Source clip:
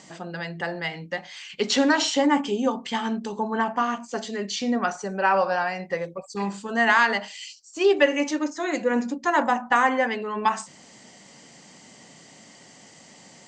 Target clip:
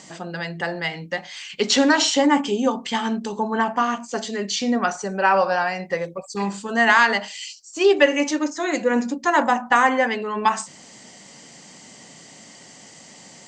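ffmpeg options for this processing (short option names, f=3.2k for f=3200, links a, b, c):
-af "highshelf=f=5k:g=4.5,volume=3dB"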